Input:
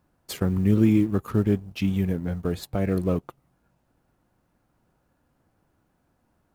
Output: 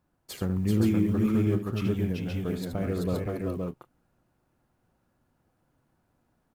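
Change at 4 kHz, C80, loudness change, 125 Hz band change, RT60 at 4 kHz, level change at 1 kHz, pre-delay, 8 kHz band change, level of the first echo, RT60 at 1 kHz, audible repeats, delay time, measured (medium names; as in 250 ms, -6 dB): -2.5 dB, no reverb, -3.5 dB, -3.0 dB, no reverb, -2.5 dB, no reverb, -2.5 dB, -8.5 dB, no reverb, 3, 76 ms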